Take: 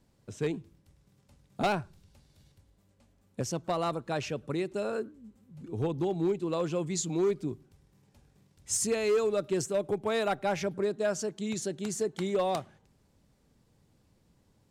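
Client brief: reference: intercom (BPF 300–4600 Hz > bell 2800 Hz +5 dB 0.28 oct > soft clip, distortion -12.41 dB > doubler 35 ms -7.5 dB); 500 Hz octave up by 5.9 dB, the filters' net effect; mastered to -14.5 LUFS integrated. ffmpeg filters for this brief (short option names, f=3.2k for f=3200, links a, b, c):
-filter_complex "[0:a]highpass=300,lowpass=4.6k,equalizer=f=500:t=o:g=8.5,equalizer=f=2.8k:t=o:w=0.28:g=5,asoftclip=threshold=-22.5dB,asplit=2[a][b];[b]adelay=35,volume=-7.5dB[c];[a][c]amix=inputs=2:normalize=0,volume=15.5dB"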